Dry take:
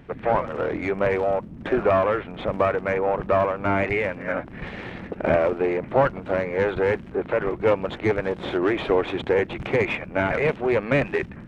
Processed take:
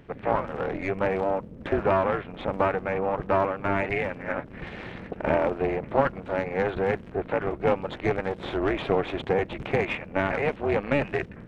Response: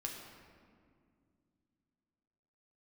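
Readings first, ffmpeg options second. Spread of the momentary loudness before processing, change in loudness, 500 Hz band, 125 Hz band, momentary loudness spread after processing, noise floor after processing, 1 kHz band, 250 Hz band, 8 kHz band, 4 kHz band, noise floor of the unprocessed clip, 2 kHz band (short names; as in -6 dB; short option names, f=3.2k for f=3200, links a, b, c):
6 LU, -3.5 dB, -4.0 dB, -2.5 dB, 7 LU, -44 dBFS, -2.0 dB, -3.0 dB, n/a, -3.0 dB, -40 dBFS, -3.5 dB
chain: -af "tremolo=f=290:d=0.788"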